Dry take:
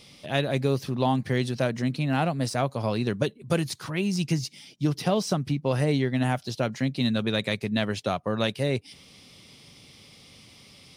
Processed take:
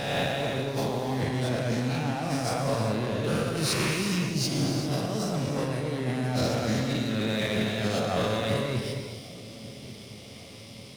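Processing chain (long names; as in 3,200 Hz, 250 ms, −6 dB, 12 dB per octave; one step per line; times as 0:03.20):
peak hold with a rise ahead of every peak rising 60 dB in 1.27 s
low-shelf EQ 350 Hz +2.5 dB
compressor whose output falls as the input rises −28 dBFS, ratio −1
in parallel at −10.5 dB: fuzz pedal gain 29 dB, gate −38 dBFS
on the sum: delay with a low-pass on its return 1,141 ms, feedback 60%, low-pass 570 Hz, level −17 dB
reverb whose tail is shaped and stops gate 430 ms flat, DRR 2 dB
level −8 dB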